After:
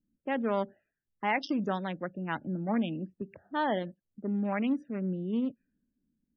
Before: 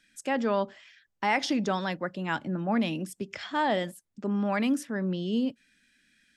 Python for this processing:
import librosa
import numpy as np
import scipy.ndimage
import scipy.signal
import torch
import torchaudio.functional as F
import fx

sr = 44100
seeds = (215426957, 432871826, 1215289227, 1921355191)

y = fx.wiener(x, sr, points=41)
y = fx.env_lowpass(y, sr, base_hz=390.0, full_db=-26.0)
y = fx.spec_topn(y, sr, count=64)
y = F.gain(torch.from_numpy(y), -2.0).numpy()